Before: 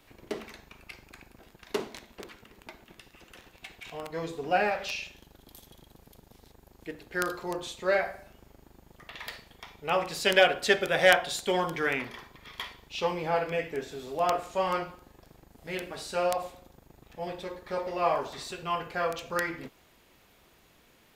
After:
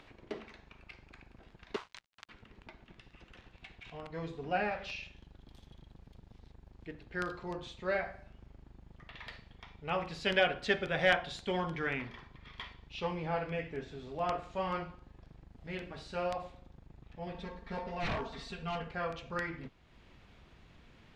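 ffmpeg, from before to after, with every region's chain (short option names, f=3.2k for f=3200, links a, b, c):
-filter_complex "[0:a]asettb=1/sr,asplit=3[a][b][c];[a]atrim=end=1.764[d];[b]atrim=start=1.76:end=2.29,asetpts=PTS-STARTPTS,afade=t=in:d=0.004:c=qsin,afade=t=out:st=0.526:d=0.004:c=qsin,highpass=f=1.1k:t=q:w=2.3,highshelf=f=3.8k:g=10,aeval=exprs='sgn(val(0))*max(abs(val(0))-0.00708,0)':c=same[e];[c]atrim=start=2.286[f];[d][e]acrossfade=d=0.004:c1=hsin:c2=qsin[g];[g][f]acrossfade=d=0.004:c1=qsin:c2=hsin,asettb=1/sr,asplit=3[h][i][j];[h]atrim=end=17.344[k];[i]atrim=start=17.34:end=18.91,asetpts=PTS-STARTPTS,afade=t=in:d=0.004:c=qsin,afade=t=out:st=1.566:d=0.004:c=qsin,aecho=1:1:4.4:0.95,atrim=end_sample=69237,aeval=exprs='0.0631*(abs(mod(val(0)/0.0631+3,4)-2)-1)':c=same[l];[j]atrim=start=18.906[m];[k][l]acrossfade=d=0.004:c1=hsin:c2=qsin[n];[n][m]acrossfade=d=0.004:c1=qsin:c2=hsin,lowpass=3.9k,asubboost=boost=2.5:cutoff=230,acompressor=mode=upward:threshold=-44dB:ratio=2.5,volume=-6dB"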